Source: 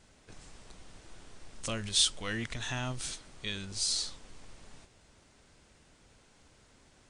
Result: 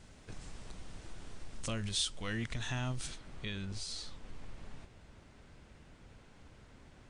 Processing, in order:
downward compressor 1.5 to 1, threshold −49 dBFS, peak gain reduction 10 dB
bass and treble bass +5 dB, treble −2 dB, from 0:03.06 treble −10 dB
level +2.5 dB

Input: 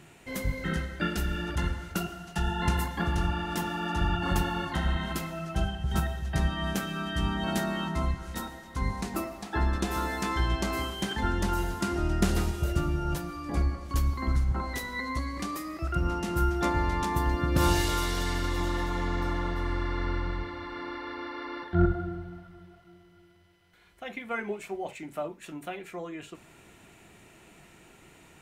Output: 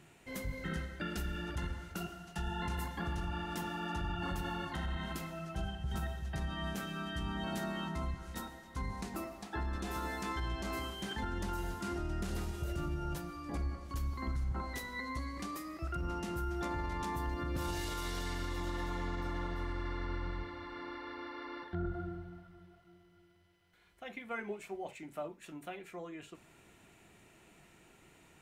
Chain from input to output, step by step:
brickwall limiter −21.5 dBFS, peak gain reduction 10.5 dB
level −7 dB

